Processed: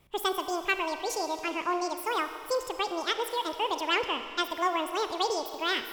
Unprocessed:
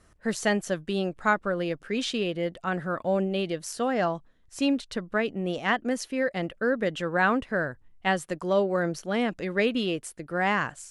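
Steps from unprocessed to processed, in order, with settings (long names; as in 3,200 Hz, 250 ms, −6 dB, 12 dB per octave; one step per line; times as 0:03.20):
change of speed 1.84×
four-comb reverb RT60 2.3 s, combs from 30 ms, DRR 8.5 dB
level −3.5 dB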